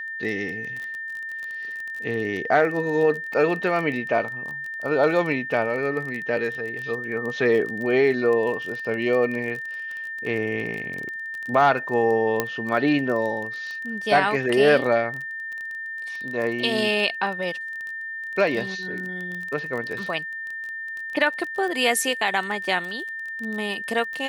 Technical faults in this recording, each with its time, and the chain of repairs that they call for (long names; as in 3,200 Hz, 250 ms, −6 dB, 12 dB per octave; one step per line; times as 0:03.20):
surface crackle 26 per second −29 dBFS
whistle 1,800 Hz −30 dBFS
0:12.40: click −7 dBFS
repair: click removal
notch filter 1,800 Hz, Q 30